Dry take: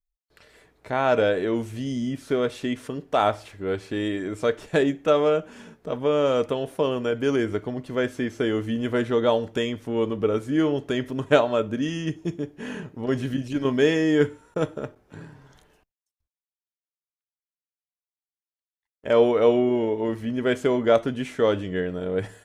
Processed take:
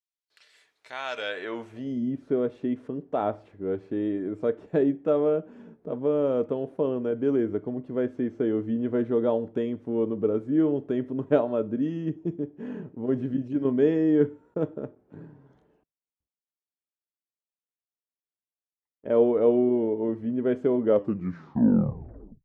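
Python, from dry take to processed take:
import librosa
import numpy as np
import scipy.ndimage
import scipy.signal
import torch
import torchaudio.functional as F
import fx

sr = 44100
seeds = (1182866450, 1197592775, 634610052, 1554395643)

y = fx.tape_stop_end(x, sr, length_s=1.63)
y = fx.filter_sweep_bandpass(y, sr, from_hz=4300.0, to_hz=280.0, start_s=1.16, end_s=2.04, q=0.81)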